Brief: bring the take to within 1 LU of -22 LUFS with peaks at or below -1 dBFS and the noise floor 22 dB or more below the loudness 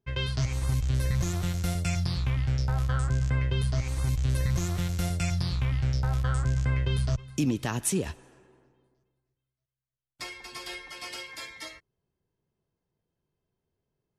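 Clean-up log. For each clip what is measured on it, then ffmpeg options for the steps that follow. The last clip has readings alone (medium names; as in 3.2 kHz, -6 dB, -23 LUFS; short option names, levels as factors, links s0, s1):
loudness -29.0 LUFS; peak level -14.5 dBFS; loudness target -22.0 LUFS
-> -af "volume=2.24"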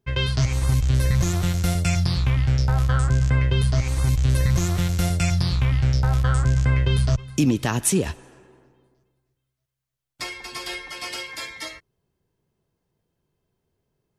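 loudness -22.0 LUFS; peak level -7.5 dBFS; noise floor -79 dBFS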